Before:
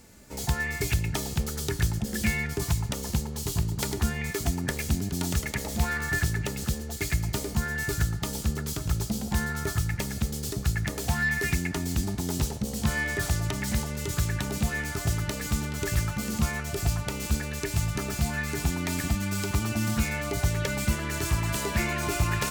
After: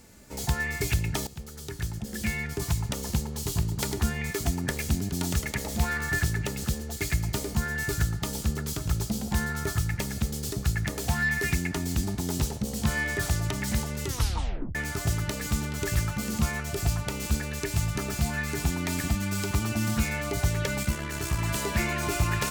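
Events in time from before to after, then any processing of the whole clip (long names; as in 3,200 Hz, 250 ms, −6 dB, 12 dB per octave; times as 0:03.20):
0:01.27–0:02.94: fade in linear, from −14.5 dB
0:14.05: tape stop 0.70 s
0:20.83–0:21.39: amplitude modulation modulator 68 Hz, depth 35%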